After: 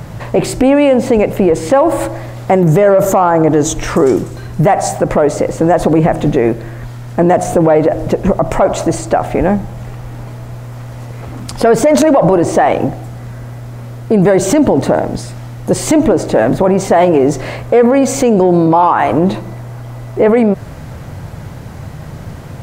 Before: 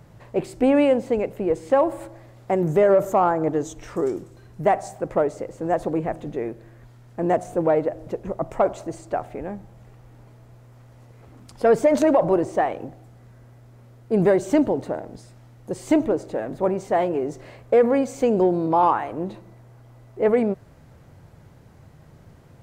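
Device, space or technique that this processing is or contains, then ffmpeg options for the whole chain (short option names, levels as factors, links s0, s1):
mastering chain: -af "equalizer=f=390:t=o:w=0.78:g=-3.5,acompressor=threshold=0.0708:ratio=2,alimiter=level_in=13.3:limit=0.891:release=50:level=0:latency=1,volume=0.891"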